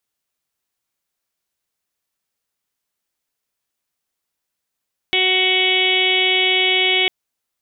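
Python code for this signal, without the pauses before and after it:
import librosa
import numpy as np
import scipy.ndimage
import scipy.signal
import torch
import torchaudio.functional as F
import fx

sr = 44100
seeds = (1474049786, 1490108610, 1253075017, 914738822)

y = fx.additive_steady(sr, length_s=1.95, hz=372.0, level_db=-23, upper_db=(-4.5, -18.5, -18, -9.5, 5.0, -3, 3.0, 3, -5))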